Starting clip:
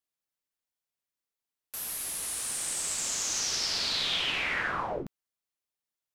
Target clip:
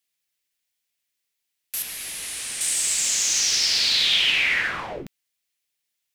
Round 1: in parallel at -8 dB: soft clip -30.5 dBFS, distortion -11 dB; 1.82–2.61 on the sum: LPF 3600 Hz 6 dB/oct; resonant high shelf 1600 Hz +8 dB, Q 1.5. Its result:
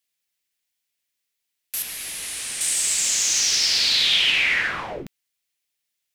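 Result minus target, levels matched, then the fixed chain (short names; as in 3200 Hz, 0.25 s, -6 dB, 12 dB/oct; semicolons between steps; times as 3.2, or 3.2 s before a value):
soft clip: distortion -6 dB
in parallel at -8 dB: soft clip -40 dBFS, distortion -6 dB; 1.82–2.61 on the sum: LPF 3600 Hz 6 dB/oct; resonant high shelf 1600 Hz +8 dB, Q 1.5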